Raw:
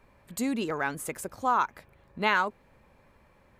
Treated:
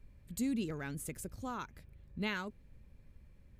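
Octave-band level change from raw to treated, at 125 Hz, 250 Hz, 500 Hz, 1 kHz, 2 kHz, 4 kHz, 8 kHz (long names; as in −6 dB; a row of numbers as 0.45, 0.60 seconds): 0.0, −4.0, −11.0, −18.5, −13.0, −8.5, −6.5 decibels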